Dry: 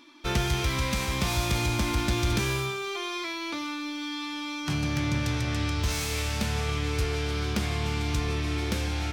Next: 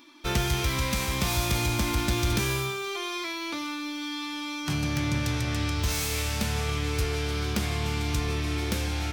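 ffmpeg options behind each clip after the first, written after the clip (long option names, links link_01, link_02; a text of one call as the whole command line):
ffmpeg -i in.wav -af "highshelf=frequency=11000:gain=10" out.wav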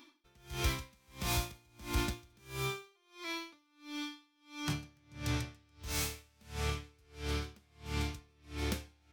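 ffmpeg -i in.wav -af "aeval=exprs='val(0)*pow(10,-36*(0.5-0.5*cos(2*PI*1.5*n/s))/20)':channel_layout=same,volume=-4.5dB" out.wav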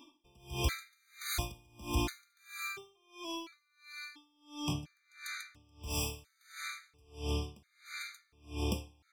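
ffmpeg -i in.wav -af "bandreject=frequency=50:width_type=h:width=6,bandreject=frequency=100:width_type=h:width=6,bandreject=frequency=150:width_type=h:width=6,afftfilt=real='re*gt(sin(2*PI*0.72*pts/sr)*(1-2*mod(floor(b*sr/1024/1200),2)),0)':imag='im*gt(sin(2*PI*0.72*pts/sr)*(1-2*mod(floor(b*sr/1024/1200),2)),0)':win_size=1024:overlap=0.75,volume=2.5dB" out.wav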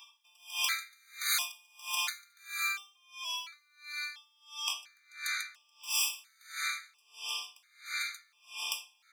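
ffmpeg -i in.wav -af "highpass=frequency=1200:width=0.5412,highpass=frequency=1200:width=1.3066,volume=8dB" out.wav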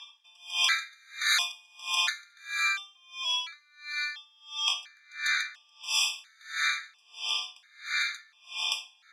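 ffmpeg -i in.wav -af "highpass=250,equalizer=frequency=730:width_type=q:width=4:gain=5,equalizer=frequency=1700:width_type=q:width=4:gain=10,equalizer=frequency=3500:width_type=q:width=4:gain=7,equalizer=frequency=8700:width_type=q:width=4:gain=-10,lowpass=frequency=9700:width=0.5412,lowpass=frequency=9700:width=1.3066,volume=3dB" out.wav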